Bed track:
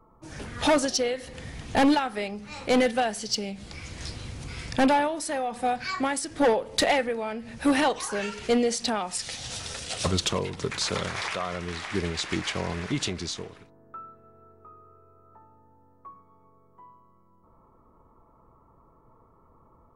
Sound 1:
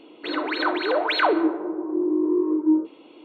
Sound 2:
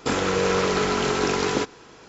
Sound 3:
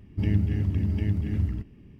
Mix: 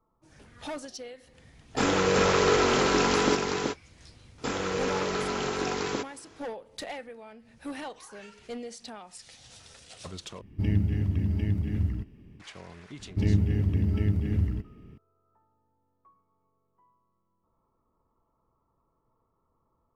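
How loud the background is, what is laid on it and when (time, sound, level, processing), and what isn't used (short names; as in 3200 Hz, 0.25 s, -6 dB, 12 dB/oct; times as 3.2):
bed track -15.5 dB
1.71 add 2 -1.5 dB, fades 0.10 s + echo 0.379 s -4.5 dB
4.38 add 2 -7.5 dB
10.41 replace with 3 -1.5 dB
12.99 add 3 + bell 440 Hz +5.5 dB 0.34 oct
not used: 1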